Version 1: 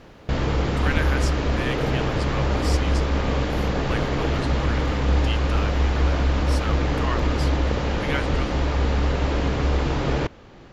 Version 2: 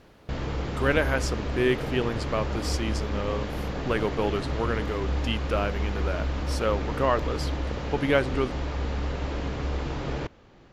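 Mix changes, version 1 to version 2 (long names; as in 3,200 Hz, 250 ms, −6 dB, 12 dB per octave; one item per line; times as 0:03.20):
speech: remove high-pass filter 1,200 Hz 12 dB per octave
background −8.0 dB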